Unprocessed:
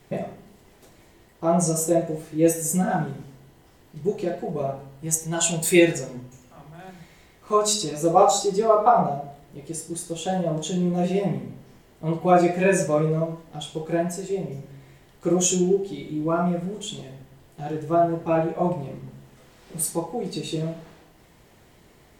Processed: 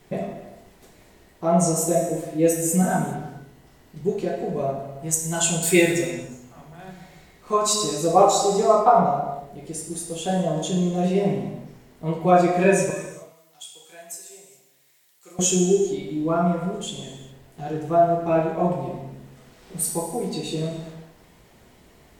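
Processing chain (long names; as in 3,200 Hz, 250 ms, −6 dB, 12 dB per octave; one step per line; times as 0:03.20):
0:12.90–0:15.39: first difference
reverb whose tail is shaped and stops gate 440 ms falling, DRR 4.5 dB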